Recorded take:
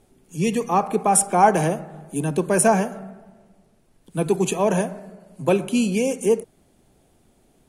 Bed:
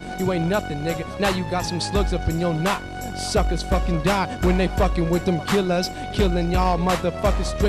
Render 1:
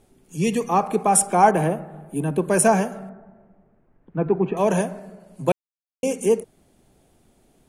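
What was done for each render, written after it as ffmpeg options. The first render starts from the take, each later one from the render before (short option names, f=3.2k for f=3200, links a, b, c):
-filter_complex "[0:a]asettb=1/sr,asplit=3[a][b][c];[a]atrim=end=1.514[d];[b]atrim=start=1.51:end=2.48,asetpts=PTS-STARTPTS,afade=t=in:d=0.004:c=qsin,afade=t=out:st=0.966:d=0.004:c=qsin,equalizer=f=5.7k:t=o:w=1.2:g=-15[e];[c]atrim=start=2.476[f];[d][e]acrossfade=d=0.004:c1=hsin:c2=qsin[g];[g][f]acrossfade=d=0.004:c1=qsin:c2=hsin,asettb=1/sr,asplit=3[h][i][j];[h]atrim=end=3.094[k];[i]atrim=start=3.09:end=4.57,asetpts=PTS-STARTPTS,afade=t=in:d=0.004:c=qsin,afade=t=out:st=1.476:d=0.004:c=qsin,lowpass=f=1.9k:w=0.5412,lowpass=f=1.9k:w=1.3066[l];[j]atrim=start=4.566[m];[k][l]acrossfade=d=0.004:c1=hsin:c2=qsin[n];[n][m]acrossfade=d=0.004:c1=qsin:c2=hsin,asplit=3[o][p][q];[o]atrim=end=5.52,asetpts=PTS-STARTPTS,afade=t=out:st=5.516:d=0.004:c=hsin[r];[p]atrim=start=5.52:end=6.03,asetpts=PTS-STARTPTS,volume=0[s];[q]atrim=start=6.03,asetpts=PTS-STARTPTS,afade=t=in:d=0.004:c=hsin[t];[r][s][t]concat=n=3:v=0:a=1"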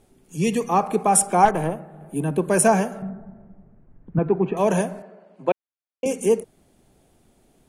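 -filter_complex "[0:a]asettb=1/sr,asplit=3[a][b][c];[a]atrim=end=1.454[d];[b]atrim=start=1.45:end=2.01,asetpts=PTS-STARTPTS,afade=t=in:d=0.004:c=qsin,afade=t=out:st=0.556:d=0.004:c=qsin,aeval=exprs='(tanh(3.16*val(0)+0.7)-tanh(0.7))/3.16':c=same[e];[c]atrim=start=2.006[f];[d][e]acrossfade=d=0.004:c1=hsin:c2=qsin[g];[g][f]acrossfade=d=0.004:c1=qsin:c2=hsin,asettb=1/sr,asplit=3[h][i][j];[h]atrim=end=3.024[k];[i]atrim=start=3.02:end=4.19,asetpts=PTS-STARTPTS,afade=t=in:d=0.004:c=qsin,afade=t=out:st=1.166:d=0.004:c=qsin,bass=f=250:g=11,treble=f=4k:g=-15[l];[j]atrim=start=4.186[m];[k][l]acrossfade=d=0.004:c1=hsin:c2=qsin[n];[n][m]acrossfade=d=0.004:c1=qsin:c2=hsin,asettb=1/sr,asplit=3[o][p][q];[o]atrim=end=5.024[r];[p]atrim=start=5.02:end=6.06,asetpts=PTS-STARTPTS,afade=t=in:d=0.004:c=qsin,afade=t=out:st=1.036:d=0.004:c=qsin,highpass=310,lowpass=2.7k[s];[q]atrim=start=6.056[t];[r][s]acrossfade=d=0.004:c1=hsin:c2=qsin[u];[u][t]acrossfade=d=0.004:c1=qsin:c2=hsin"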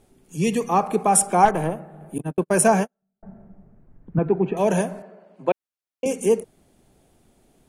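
-filter_complex "[0:a]asettb=1/sr,asplit=3[a][b][c];[a]atrim=end=2.184[d];[b]atrim=start=2.18:end=3.23,asetpts=PTS-STARTPTS,afade=t=in:d=0.004:c=qsin,afade=t=out:st=1.046:d=0.004:c=qsin,agate=range=-47dB:threshold=-23dB:ratio=16:release=100:detection=peak[e];[c]atrim=start=3.226[f];[d][e]acrossfade=d=0.004:c1=hsin:c2=qsin[g];[g][f]acrossfade=d=0.004:c1=qsin:c2=hsin,asettb=1/sr,asplit=3[h][i][j];[h]atrim=end=4.254[k];[i]atrim=start=4.25:end=4.78,asetpts=PTS-STARTPTS,afade=t=in:d=0.004:c=qsin,afade=t=out:st=0.526:d=0.004:c=qsin,equalizer=f=1.1k:w=7.7:g=-9.5[l];[j]atrim=start=4.776[m];[k][l]acrossfade=d=0.004:c1=hsin:c2=qsin[n];[n][m]acrossfade=d=0.004:c1=qsin:c2=hsin"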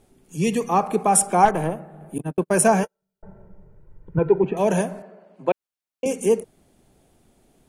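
-filter_complex "[0:a]asettb=1/sr,asplit=3[a][b][c];[a]atrim=end=2.834[d];[b]atrim=start=2.83:end=4.44,asetpts=PTS-STARTPTS,afade=t=in:d=0.004:c=qsin,afade=t=out:st=1.606:d=0.004:c=qsin,aecho=1:1:2.1:0.82,atrim=end_sample=71001[e];[c]atrim=start=4.436[f];[d][e]acrossfade=d=0.004:c1=hsin:c2=qsin[g];[g][f]acrossfade=d=0.004:c1=qsin:c2=hsin"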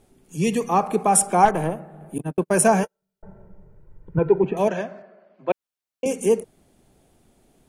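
-filter_complex "[0:a]asettb=1/sr,asplit=3[a][b][c];[a]atrim=end=4.684[d];[b]atrim=start=4.68:end=5.5,asetpts=PTS-STARTPTS,afade=t=in:d=0.004:c=qsin,afade=t=out:st=0.816:d=0.004:c=qsin,highpass=150,equalizer=f=180:t=q:w=4:g=-9,equalizer=f=280:t=q:w=4:g=-7,equalizer=f=450:t=q:w=4:g=-9,equalizer=f=880:t=q:w=4:g=-9,equalizer=f=2.8k:t=q:w=4:g=-4,equalizer=f=4k:t=q:w=4:g=-4,lowpass=f=4.7k:w=0.5412,lowpass=f=4.7k:w=1.3066[e];[c]atrim=start=5.496[f];[d][e]acrossfade=d=0.004:c1=hsin:c2=qsin[g];[g][f]acrossfade=d=0.004:c1=qsin:c2=hsin"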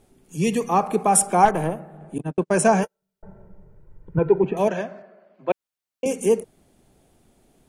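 -filter_complex "[0:a]asettb=1/sr,asplit=3[a][b][c];[a]atrim=end=1.974[d];[b]atrim=start=1.97:end=2.82,asetpts=PTS-STARTPTS,afade=t=in:d=0.004:c=qsin,afade=t=out:st=0.846:d=0.004:c=qsin,lowpass=f=8.5k:w=0.5412,lowpass=f=8.5k:w=1.3066[e];[c]atrim=start=2.816[f];[d][e]acrossfade=d=0.004:c1=hsin:c2=qsin[g];[g][f]acrossfade=d=0.004:c1=qsin:c2=hsin"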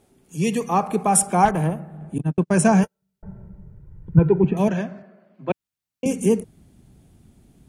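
-af "highpass=f=87:p=1,asubboost=boost=6.5:cutoff=200"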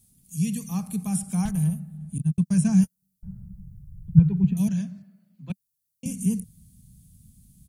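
-filter_complex "[0:a]acrossover=split=3300[a][b];[b]acompressor=threshold=-41dB:ratio=4:attack=1:release=60[c];[a][c]amix=inputs=2:normalize=0,firequalizer=gain_entry='entry(190,0);entry(350,-26);entry(4200,-1);entry(11000,11)':delay=0.05:min_phase=1"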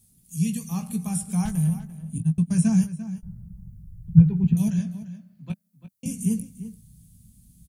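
-filter_complex "[0:a]asplit=2[a][b];[b]adelay=18,volume=-8dB[c];[a][c]amix=inputs=2:normalize=0,asplit=2[d][e];[e]adelay=344,volume=-13dB,highshelf=f=4k:g=-7.74[f];[d][f]amix=inputs=2:normalize=0"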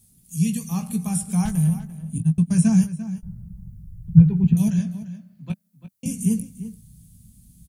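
-af "volume=3dB,alimiter=limit=-1dB:level=0:latency=1"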